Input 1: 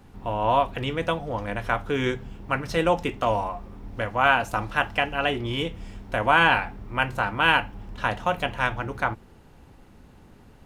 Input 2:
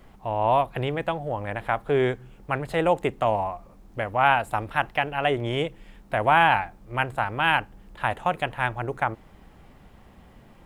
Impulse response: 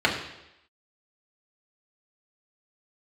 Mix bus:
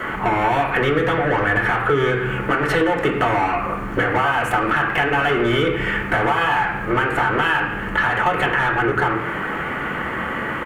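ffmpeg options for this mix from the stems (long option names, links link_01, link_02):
-filter_complex "[0:a]equalizer=frequency=140:width=1.4:gain=7.5,alimiter=limit=-15.5dB:level=0:latency=1:release=459,volume=3dB,asplit=2[link_01][link_02];[link_02]volume=-14.5dB[link_03];[1:a]asplit=2[link_04][link_05];[link_05]highpass=frequency=720:poles=1,volume=37dB,asoftclip=type=tanh:threshold=-5dB[link_06];[link_04][link_06]amix=inputs=2:normalize=0,lowpass=frequency=7800:poles=1,volume=-6dB,firequalizer=gain_entry='entry(470,0);entry(690,-9);entry(1200,6);entry(2400,2);entry(3900,-18);entry(7800,-8)':delay=0.05:min_phase=1,acompressor=threshold=-18dB:ratio=6,adelay=0.8,volume=-4dB,asplit=2[link_07][link_08];[link_08]volume=-11dB[link_09];[2:a]atrim=start_sample=2205[link_10];[link_03][link_09]amix=inputs=2:normalize=0[link_11];[link_11][link_10]afir=irnorm=-1:irlink=0[link_12];[link_01][link_07][link_12]amix=inputs=3:normalize=0,acompressor=threshold=-14dB:ratio=6"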